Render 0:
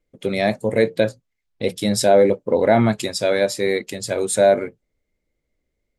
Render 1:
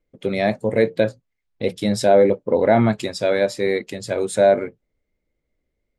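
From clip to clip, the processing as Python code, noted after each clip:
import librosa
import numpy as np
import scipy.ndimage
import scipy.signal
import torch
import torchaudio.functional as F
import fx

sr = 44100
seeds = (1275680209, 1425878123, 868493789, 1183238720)

y = fx.lowpass(x, sr, hz=3400.0, slope=6)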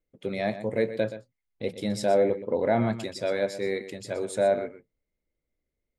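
y = x + 10.0 ** (-12.5 / 20.0) * np.pad(x, (int(123 * sr / 1000.0), 0))[:len(x)]
y = y * 10.0 ** (-8.5 / 20.0)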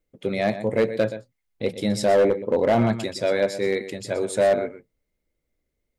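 y = np.clip(x, -10.0 ** (-18.5 / 20.0), 10.0 ** (-18.5 / 20.0))
y = y * 10.0 ** (5.5 / 20.0)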